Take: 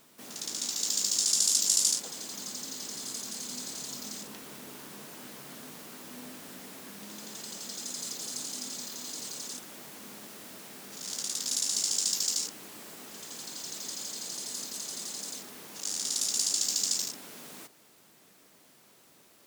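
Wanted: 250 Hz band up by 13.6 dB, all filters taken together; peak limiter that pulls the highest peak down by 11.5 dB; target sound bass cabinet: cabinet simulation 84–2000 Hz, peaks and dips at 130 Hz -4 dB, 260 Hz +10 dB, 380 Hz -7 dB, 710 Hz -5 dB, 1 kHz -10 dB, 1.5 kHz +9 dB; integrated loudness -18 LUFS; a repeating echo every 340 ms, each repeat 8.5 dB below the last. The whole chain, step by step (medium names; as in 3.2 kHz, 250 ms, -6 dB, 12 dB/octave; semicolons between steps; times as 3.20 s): peaking EQ 250 Hz +8.5 dB; peak limiter -21 dBFS; cabinet simulation 84–2000 Hz, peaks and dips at 130 Hz -4 dB, 260 Hz +10 dB, 380 Hz -7 dB, 710 Hz -5 dB, 1 kHz -10 dB, 1.5 kHz +9 dB; feedback delay 340 ms, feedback 38%, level -8.5 dB; trim +21.5 dB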